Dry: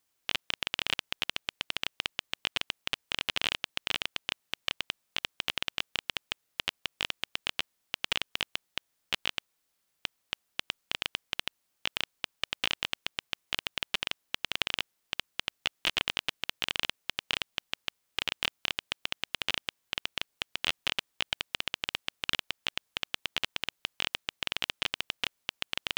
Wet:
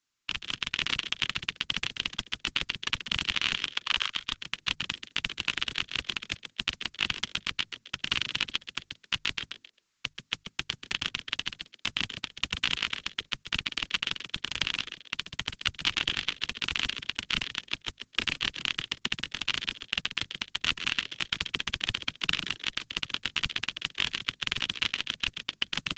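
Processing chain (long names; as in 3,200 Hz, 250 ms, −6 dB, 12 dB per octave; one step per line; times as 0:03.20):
Chebyshev band-stop filter 300–1,100 Hz, order 2
mains-hum notches 50/100/150 Hz
0:03.69–0:04.16: low shelf with overshoot 700 Hz −11 dB, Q 3
automatic gain control gain up to 5.5 dB
echo with shifted repeats 133 ms, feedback 30%, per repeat +110 Hz, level −9 dB
downsampling to 16,000 Hz
level −1.5 dB
Opus 10 kbit/s 48,000 Hz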